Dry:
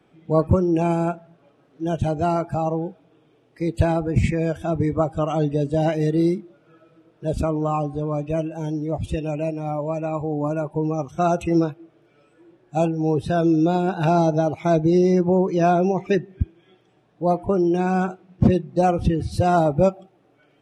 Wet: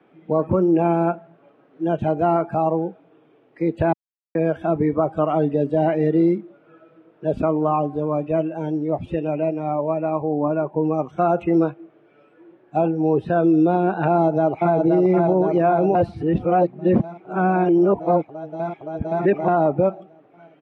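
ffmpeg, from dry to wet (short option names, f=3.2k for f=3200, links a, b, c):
-filter_complex "[0:a]asettb=1/sr,asplit=3[a][b][c];[a]atrim=end=9.934[d];[b]atrim=start=9.93:end=10.84,asetpts=PTS-STARTPTS,afade=t=in:d=0.004:c=qsin,afade=t=out:st=0.906:d=0.004:c=qsin,lowpass=f=2.8k:p=1[e];[c]atrim=start=10.836[f];[d][e]acrossfade=d=0.004:c1=hsin:c2=qsin[g];[g][f]acrossfade=d=0.004:c1=qsin:c2=hsin,asplit=2[h][i];[i]afade=t=in:st=14.09:d=0.01,afade=t=out:st=14.75:d=0.01,aecho=0:1:520|1040|1560|2080|2600|3120|3640|4160|4680|5200|5720|6240:0.668344|0.467841|0.327489|0.229242|0.160469|0.112329|0.07863|0.055041|0.0385287|0.0269701|0.0188791|0.0132153[j];[h][j]amix=inputs=2:normalize=0,asplit=5[k][l][m][n][o];[k]atrim=end=3.93,asetpts=PTS-STARTPTS,afade=t=out:st=3.926:d=0.004:c=hsin[p];[l]atrim=start=3.93:end=4.35,asetpts=PTS-STARTPTS,volume=0[q];[m]atrim=start=4.35:end=15.952,asetpts=PTS-STARTPTS,afade=t=in:d=0.004:c=hsin[r];[n]atrim=start=15.948:end=19.482,asetpts=PTS-STARTPTS,areverse[s];[o]atrim=start=19.478[t];[p][q][r]concat=n=3:v=0:a=1[u];[u][s]acrossfade=d=0.004:c1=hsin:c2=hsin[v];[v][t]acrossfade=d=0.004:c1=hsin:c2=hsin,acrossover=split=170 3000:gain=0.158 1 0.0794[w][x][y];[w][x][y]amix=inputs=3:normalize=0,acrossover=split=2600[z][aa];[aa]acompressor=threshold=-58dB:ratio=4:attack=1:release=60[ab];[z][ab]amix=inputs=2:normalize=0,alimiter=level_in=12.5dB:limit=-1dB:release=50:level=0:latency=1,volume=-8.5dB"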